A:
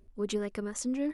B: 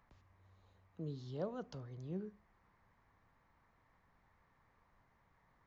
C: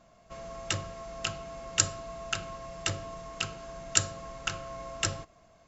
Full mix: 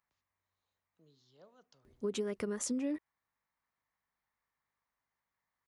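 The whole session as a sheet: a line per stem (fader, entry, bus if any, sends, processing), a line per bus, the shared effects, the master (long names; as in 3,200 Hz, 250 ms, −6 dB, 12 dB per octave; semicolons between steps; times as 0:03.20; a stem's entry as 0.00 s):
+0.5 dB, 1.85 s, no send, high-pass filter 79 Hz; parametric band 400 Hz +3 dB
−16.0 dB, 0.00 s, no send, mains hum 50 Hz, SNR 25 dB; spectral tilt +3.5 dB per octave
muted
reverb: not used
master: downward compressor 6 to 1, threshold −32 dBFS, peak gain reduction 8 dB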